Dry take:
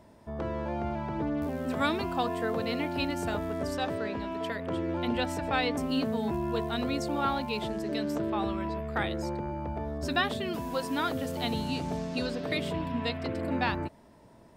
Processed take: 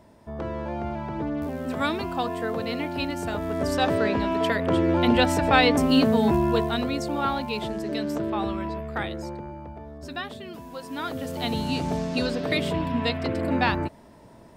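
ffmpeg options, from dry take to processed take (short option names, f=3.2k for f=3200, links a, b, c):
-af "volume=22dB,afade=t=in:st=3.34:d=0.65:silence=0.398107,afade=t=out:st=6.35:d=0.54:silence=0.446684,afade=t=out:st=8.55:d=1.24:silence=0.354813,afade=t=in:st=10.8:d=1.05:silence=0.251189"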